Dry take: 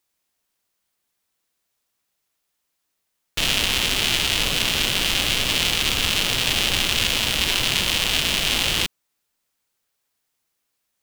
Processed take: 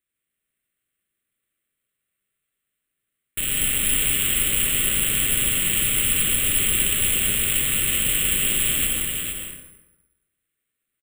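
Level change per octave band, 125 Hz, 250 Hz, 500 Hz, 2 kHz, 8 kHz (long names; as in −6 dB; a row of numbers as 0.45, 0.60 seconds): −1.0, −2.0, −5.0, −4.0, +6.0 decibels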